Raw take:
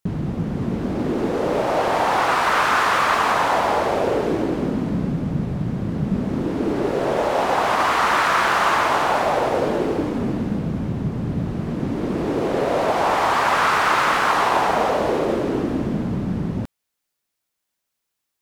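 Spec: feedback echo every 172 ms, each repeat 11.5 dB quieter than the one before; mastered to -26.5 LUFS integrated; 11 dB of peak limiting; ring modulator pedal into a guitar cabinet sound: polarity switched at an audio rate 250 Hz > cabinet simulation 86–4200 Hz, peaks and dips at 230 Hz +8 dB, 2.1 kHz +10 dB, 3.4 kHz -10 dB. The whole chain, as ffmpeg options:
-af "alimiter=limit=0.15:level=0:latency=1,aecho=1:1:172|344|516:0.266|0.0718|0.0194,aeval=exprs='val(0)*sgn(sin(2*PI*250*n/s))':c=same,highpass=86,equalizer=f=230:t=q:w=4:g=8,equalizer=f=2100:t=q:w=4:g=10,equalizer=f=3400:t=q:w=4:g=-10,lowpass=f=4200:w=0.5412,lowpass=f=4200:w=1.3066,volume=0.708"

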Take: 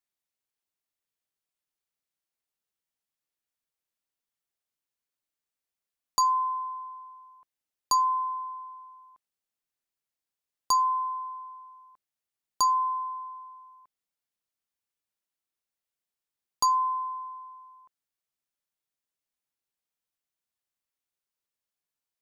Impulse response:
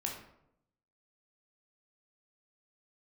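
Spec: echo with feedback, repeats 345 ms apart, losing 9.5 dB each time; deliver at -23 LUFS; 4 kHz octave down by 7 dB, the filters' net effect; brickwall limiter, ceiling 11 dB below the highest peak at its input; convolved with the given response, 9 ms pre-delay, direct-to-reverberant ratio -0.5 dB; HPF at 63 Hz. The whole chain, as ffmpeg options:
-filter_complex "[0:a]highpass=63,equalizer=f=4000:t=o:g=-8.5,alimiter=level_in=1.41:limit=0.0631:level=0:latency=1,volume=0.708,aecho=1:1:345|690|1035|1380:0.335|0.111|0.0365|0.012,asplit=2[s0][s1];[1:a]atrim=start_sample=2205,adelay=9[s2];[s1][s2]afir=irnorm=-1:irlink=0,volume=0.891[s3];[s0][s3]amix=inputs=2:normalize=0,volume=2.99"

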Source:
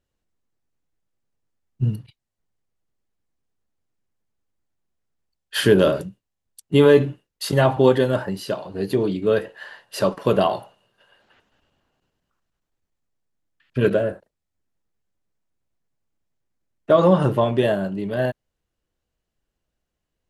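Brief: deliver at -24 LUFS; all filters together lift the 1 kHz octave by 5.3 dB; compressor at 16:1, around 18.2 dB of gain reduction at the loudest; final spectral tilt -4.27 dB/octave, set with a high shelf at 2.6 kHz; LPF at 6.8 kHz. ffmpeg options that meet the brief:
-af "lowpass=6800,equalizer=f=1000:t=o:g=6,highshelf=f=2600:g=4.5,acompressor=threshold=0.0501:ratio=16,volume=2.51"

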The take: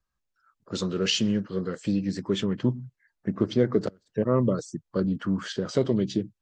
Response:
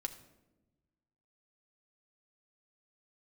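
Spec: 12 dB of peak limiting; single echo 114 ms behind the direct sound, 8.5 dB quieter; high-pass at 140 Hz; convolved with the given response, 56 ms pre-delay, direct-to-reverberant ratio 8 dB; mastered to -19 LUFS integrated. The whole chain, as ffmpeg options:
-filter_complex "[0:a]highpass=140,alimiter=limit=0.0794:level=0:latency=1,aecho=1:1:114:0.376,asplit=2[s0][s1];[1:a]atrim=start_sample=2205,adelay=56[s2];[s1][s2]afir=irnorm=-1:irlink=0,volume=0.447[s3];[s0][s3]amix=inputs=2:normalize=0,volume=4.22"

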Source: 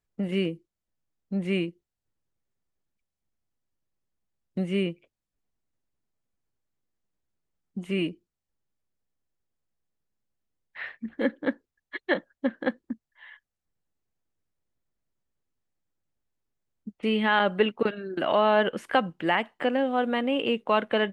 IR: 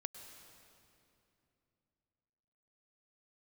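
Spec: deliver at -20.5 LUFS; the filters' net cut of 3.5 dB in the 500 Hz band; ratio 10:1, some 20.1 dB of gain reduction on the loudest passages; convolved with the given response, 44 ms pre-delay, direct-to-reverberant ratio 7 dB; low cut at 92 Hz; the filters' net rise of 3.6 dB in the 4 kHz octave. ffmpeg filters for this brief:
-filter_complex "[0:a]highpass=92,equalizer=f=500:t=o:g=-4.5,equalizer=f=4000:t=o:g=6,acompressor=threshold=0.0112:ratio=10,asplit=2[s0][s1];[1:a]atrim=start_sample=2205,adelay=44[s2];[s1][s2]afir=irnorm=-1:irlink=0,volume=0.631[s3];[s0][s3]amix=inputs=2:normalize=0,volume=15"

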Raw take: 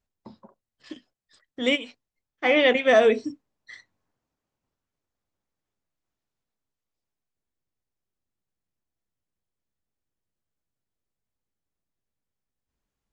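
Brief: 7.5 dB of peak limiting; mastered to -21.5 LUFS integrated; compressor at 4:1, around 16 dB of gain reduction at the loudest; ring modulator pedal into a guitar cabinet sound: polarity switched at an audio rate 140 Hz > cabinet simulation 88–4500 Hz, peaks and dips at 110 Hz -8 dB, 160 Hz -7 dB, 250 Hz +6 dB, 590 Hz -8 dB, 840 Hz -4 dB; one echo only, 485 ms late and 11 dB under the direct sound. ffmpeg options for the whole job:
-af "acompressor=threshold=0.02:ratio=4,alimiter=level_in=1.78:limit=0.0631:level=0:latency=1,volume=0.562,aecho=1:1:485:0.282,aeval=exprs='val(0)*sgn(sin(2*PI*140*n/s))':c=same,highpass=88,equalizer=f=110:t=q:w=4:g=-8,equalizer=f=160:t=q:w=4:g=-7,equalizer=f=250:t=q:w=4:g=6,equalizer=f=590:t=q:w=4:g=-8,equalizer=f=840:t=q:w=4:g=-4,lowpass=f=4500:w=0.5412,lowpass=f=4500:w=1.3066,volume=11.9"

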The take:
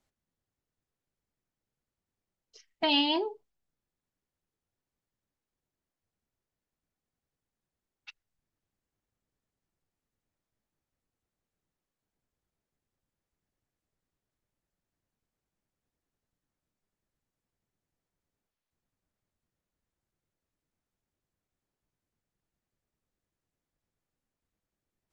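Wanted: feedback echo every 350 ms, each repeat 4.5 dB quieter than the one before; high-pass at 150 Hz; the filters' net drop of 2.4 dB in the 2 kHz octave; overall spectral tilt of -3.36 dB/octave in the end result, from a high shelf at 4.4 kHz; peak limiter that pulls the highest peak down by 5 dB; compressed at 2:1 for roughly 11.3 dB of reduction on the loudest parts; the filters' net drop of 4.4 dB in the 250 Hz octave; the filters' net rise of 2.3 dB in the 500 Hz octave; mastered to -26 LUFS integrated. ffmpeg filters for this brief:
-af "highpass=150,equalizer=f=250:t=o:g=-8,equalizer=f=500:t=o:g=6,equalizer=f=2000:t=o:g=-5,highshelf=f=4400:g=3,acompressor=threshold=0.00631:ratio=2,alimiter=level_in=2.51:limit=0.0631:level=0:latency=1,volume=0.398,aecho=1:1:350|700|1050|1400|1750|2100|2450|2800|3150:0.596|0.357|0.214|0.129|0.0772|0.0463|0.0278|0.0167|0.01,volume=10"

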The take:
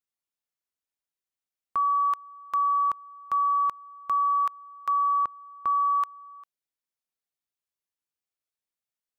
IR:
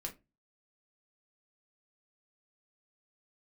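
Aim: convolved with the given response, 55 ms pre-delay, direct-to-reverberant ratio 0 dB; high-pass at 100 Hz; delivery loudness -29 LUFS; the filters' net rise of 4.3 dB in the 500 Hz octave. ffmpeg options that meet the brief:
-filter_complex "[0:a]highpass=100,equalizer=f=500:t=o:g=5.5,asplit=2[s0][s1];[1:a]atrim=start_sample=2205,adelay=55[s2];[s1][s2]afir=irnorm=-1:irlink=0,volume=1.19[s3];[s0][s3]amix=inputs=2:normalize=0,volume=0.944"

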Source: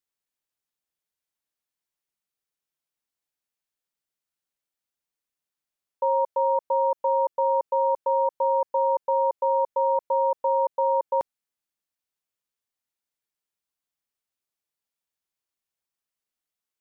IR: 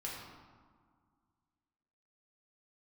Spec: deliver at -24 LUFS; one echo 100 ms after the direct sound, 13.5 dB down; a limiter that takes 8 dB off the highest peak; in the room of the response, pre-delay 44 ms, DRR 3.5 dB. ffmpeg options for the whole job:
-filter_complex "[0:a]alimiter=limit=0.0631:level=0:latency=1,aecho=1:1:100:0.211,asplit=2[s0][s1];[1:a]atrim=start_sample=2205,adelay=44[s2];[s1][s2]afir=irnorm=-1:irlink=0,volume=0.631[s3];[s0][s3]amix=inputs=2:normalize=0,volume=1.88"

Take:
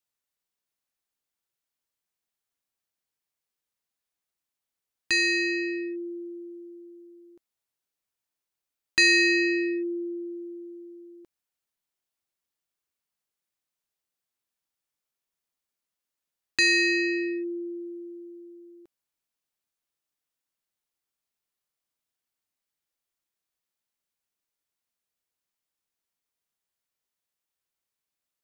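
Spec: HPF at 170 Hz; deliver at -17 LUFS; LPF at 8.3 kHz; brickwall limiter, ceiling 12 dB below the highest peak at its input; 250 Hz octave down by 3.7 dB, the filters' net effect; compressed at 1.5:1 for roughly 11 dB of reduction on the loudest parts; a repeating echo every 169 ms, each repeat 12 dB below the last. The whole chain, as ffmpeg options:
-af "highpass=170,lowpass=8300,equalizer=f=250:t=o:g=-6.5,acompressor=threshold=0.00355:ratio=1.5,alimiter=level_in=2.24:limit=0.0631:level=0:latency=1,volume=0.447,aecho=1:1:169|338|507:0.251|0.0628|0.0157,volume=15"

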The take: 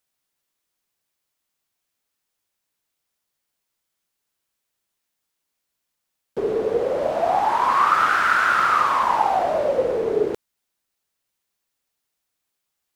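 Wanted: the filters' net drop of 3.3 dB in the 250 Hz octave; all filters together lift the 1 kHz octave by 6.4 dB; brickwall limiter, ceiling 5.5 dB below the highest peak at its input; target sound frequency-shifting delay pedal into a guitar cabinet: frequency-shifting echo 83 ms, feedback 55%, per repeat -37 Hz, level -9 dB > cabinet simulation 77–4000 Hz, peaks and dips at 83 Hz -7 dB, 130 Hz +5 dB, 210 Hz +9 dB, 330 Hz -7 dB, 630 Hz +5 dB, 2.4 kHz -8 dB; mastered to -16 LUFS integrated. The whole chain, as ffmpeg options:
-filter_complex "[0:a]equalizer=f=250:t=o:g=-6,equalizer=f=1000:t=o:g=8,alimiter=limit=0.501:level=0:latency=1,asplit=7[s0][s1][s2][s3][s4][s5][s6];[s1]adelay=83,afreqshift=-37,volume=0.355[s7];[s2]adelay=166,afreqshift=-74,volume=0.195[s8];[s3]adelay=249,afreqshift=-111,volume=0.107[s9];[s4]adelay=332,afreqshift=-148,volume=0.0589[s10];[s5]adelay=415,afreqshift=-185,volume=0.0324[s11];[s6]adelay=498,afreqshift=-222,volume=0.0178[s12];[s0][s7][s8][s9][s10][s11][s12]amix=inputs=7:normalize=0,highpass=77,equalizer=f=83:t=q:w=4:g=-7,equalizer=f=130:t=q:w=4:g=5,equalizer=f=210:t=q:w=4:g=9,equalizer=f=330:t=q:w=4:g=-7,equalizer=f=630:t=q:w=4:g=5,equalizer=f=2400:t=q:w=4:g=-8,lowpass=f=4000:w=0.5412,lowpass=f=4000:w=1.3066,volume=0.891"

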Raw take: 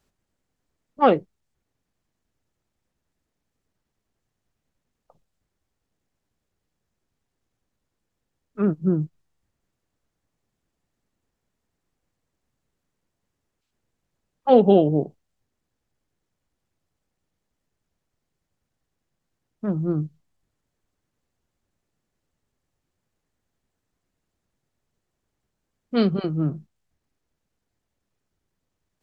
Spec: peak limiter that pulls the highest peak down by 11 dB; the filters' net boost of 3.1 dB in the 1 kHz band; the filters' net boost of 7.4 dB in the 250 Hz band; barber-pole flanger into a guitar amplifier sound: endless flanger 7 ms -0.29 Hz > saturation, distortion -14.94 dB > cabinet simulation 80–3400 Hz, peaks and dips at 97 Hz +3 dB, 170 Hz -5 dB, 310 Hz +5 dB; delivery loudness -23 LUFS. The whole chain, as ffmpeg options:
-filter_complex "[0:a]equalizer=f=250:t=o:g=8.5,equalizer=f=1000:t=o:g=3.5,alimiter=limit=0.299:level=0:latency=1,asplit=2[s0][s1];[s1]adelay=7,afreqshift=-0.29[s2];[s0][s2]amix=inputs=2:normalize=1,asoftclip=threshold=0.133,highpass=80,equalizer=f=97:t=q:w=4:g=3,equalizer=f=170:t=q:w=4:g=-5,equalizer=f=310:t=q:w=4:g=5,lowpass=f=3400:w=0.5412,lowpass=f=3400:w=1.3066,volume=1.5"

